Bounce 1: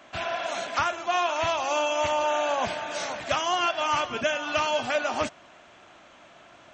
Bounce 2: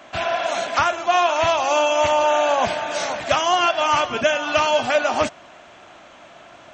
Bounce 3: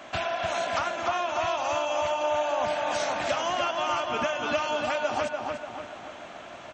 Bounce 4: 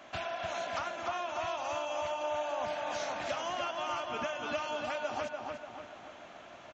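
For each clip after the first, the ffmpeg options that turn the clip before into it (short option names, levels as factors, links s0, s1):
-af "equalizer=f=690:t=o:w=0.77:g=2.5,volume=2"
-filter_complex "[0:a]acompressor=threshold=0.0447:ratio=6,asplit=2[s0][s1];[s1]adelay=293,lowpass=f=2800:p=1,volume=0.708,asplit=2[s2][s3];[s3]adelay=293,lowpass=f=2800:p=1,volume=0.5,asplit=2[s4][s5];[s5]adelay=293,lowpass=f=2800:p=1,volume=0.5,asplit=2[s6][s7];[s7]adelay=293,lowpass=f=2800:p=1,volume=0.5,asplit=2[s8][s9];[s9]adelay=293,lowpass=f=2800:p=1,volume=0.5,asplit=2[s10][s11];[s11]adelay=293,lowpass=f=2800:p=1,volume=0.5,asplit=2[s12][s13];[s13]adelay=293,lowpass=f=2800:p=1,volume=0.5[s14];[s0][s2][s4][s6][s8][s10][s12][s14]amix=inputs=8:normalize=0"
-af "aresample=16000,aresample=44100,volume=0.398"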